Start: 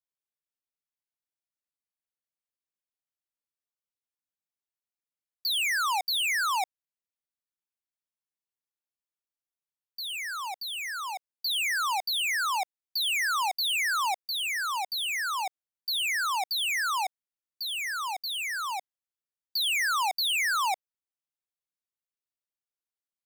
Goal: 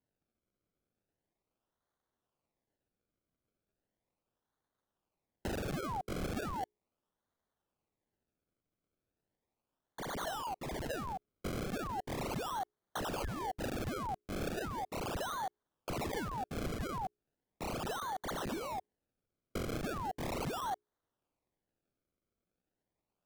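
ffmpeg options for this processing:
ffmpeg -i in.wav -filter_complex "[0:a]lowshelf=frequency=480:gain=-11.5,bandreject=frequency=60:width_type=h:width=6,bandreject=frequency=120:width_type=h:width=6,bandreject=frequency=180:width_type=h:width=6,bandreject=frequency=240:width_type=h:width=6,bandreject=frequency=300:width_type=h:width=6,bandreject=frequency=360:width_type=h:width=6,bandreject=frequency=420:width_type=h:width=6,afftfilt=real='re*(1-between(b*sr/4096,1800,5600))':imag='im*(1-between(b*sr/4096,1800,5600))':win_size=4096:overlap=0.75,acrossover=split=470[link_01][link_02];[link_02]acompressor=threshold=-41dB:ratio=10[link_03];[link_01][link_03]amix=inputs=2:normalize=0,acrossover=split=1100[link_04][link_05];[link_05]acrusher=samples=33:mix=1:aa=0.000001:lfo=1:lforange=33:lforate=0.37[link_06];[link_04][link_06]amix=inputs=2:normalize=0,volume=6dB" out.wav

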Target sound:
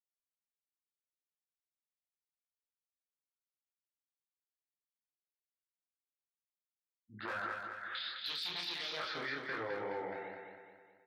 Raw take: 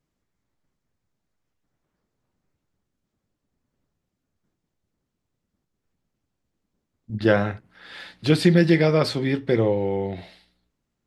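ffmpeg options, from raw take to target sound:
ffmpeg -i in.wav -filter_complex "[0:a]aeval=exprs='0.224*(abs(mod(val(0)/0.224+3,4)-2)-1)':channel_layout=same,asetnsamples=nb_out_samples=441:pad=0,asendcmd='7.95 bandpass f 3800;8.97 bandpass f 1500',bandpass=frequency=1400:width_type=q:width=3.6:csg=0,afftfilt=real='re*gte(hypot(re,im),0.00141)':imag='im*gte(hypot(re,im),0.00141)':win_size=1024:overlap=0.75,asoftclip=type=hard:threshold=-26.5dB,asplit=2[link_01][link_02];[link_02]adelay=17,volume=-10.5dB[link_03];[link_01][link_03]amix=inputs=2:normalize=0,acompressor=threshold=-39dB:ratio=10,flanger=delay=22.5:depth=6.9:speed=2.3,alimiter=level_in=16dB:limit=-24dB:level=0:latency=1:release=69,volume=-16dB,aecho=1:1:210|420|630|840|1050|1260:0.562|0.264|0.124|0.0584|0.0274|0.0129,volume=9dB" out.wav

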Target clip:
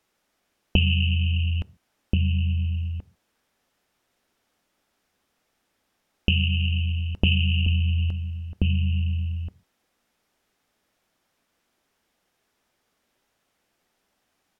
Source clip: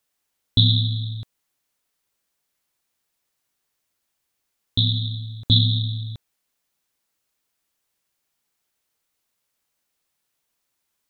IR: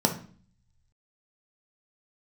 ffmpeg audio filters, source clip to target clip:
-filter_complex "[0:a]lowpass=frequency=3000:poles=1,asplit=2[link_01][link_02];[link_02]adelay=1050,volume=-6dB,highshelf=frequency=4000:gain=-23.6[link_03];[link_01][link_03]amix=inputs=2:normalize=0,acompressor=threshold=-28dB:ratio=4,asplit=2[link_04][link_05];[1:a]atrim=start_sample=2205,atrim=end_sample=6615,asetrate=57330,aresample=44100[link_06];[link_05][link_06]afir=irnorm=-1:irlink=0,volume=-24.5dB[link_07];[link_04][link_07]amix=inputs=2:normalize=0,asetrate=33516,aresample=44100,volume=8.5dB"

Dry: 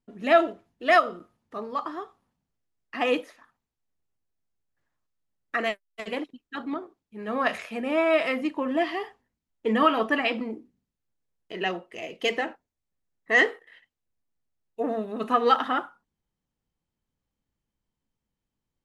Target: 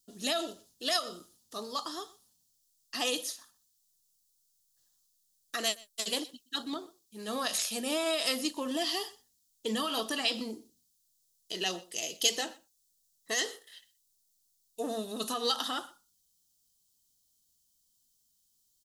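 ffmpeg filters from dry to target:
ffmpeg -i in.wav -filter_complex "[0:a]alimiter=limit=-19dB:level=0:latency=1:release=142,aexciter=amount=12.9:drive=8:freq=3500,asplit=2[link_01][link_02];[link_02]aecho=0:1:123:0.075[link_03];[link_01][link_03]amix=inputs=2:normalize=0,volume=-6dB" out.wav

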